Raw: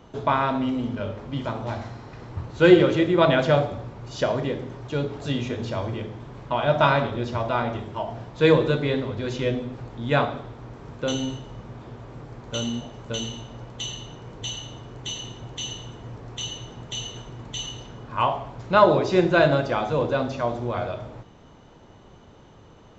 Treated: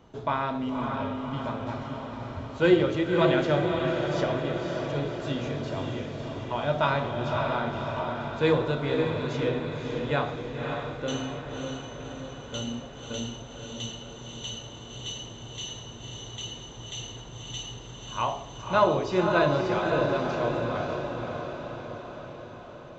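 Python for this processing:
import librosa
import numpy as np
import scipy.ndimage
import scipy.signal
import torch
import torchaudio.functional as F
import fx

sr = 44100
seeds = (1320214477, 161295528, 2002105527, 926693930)

y = fx.echo_diffused(x, sr, ms=558, feedback_pct=61, wet_db=-4)
y = y * 10.0 ** (-6.0 / 20.0)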